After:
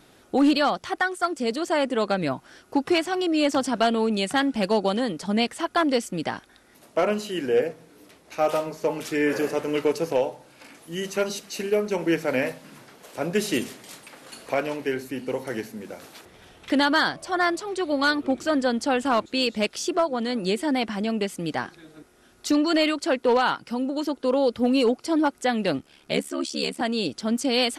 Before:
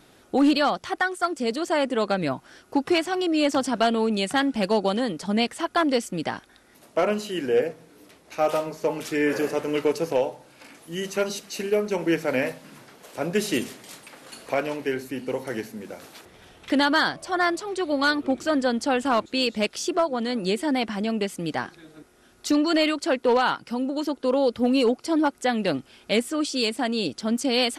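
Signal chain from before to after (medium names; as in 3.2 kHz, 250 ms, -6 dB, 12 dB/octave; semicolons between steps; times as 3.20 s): 25.78–26.81 s: ring modulator 36 Hz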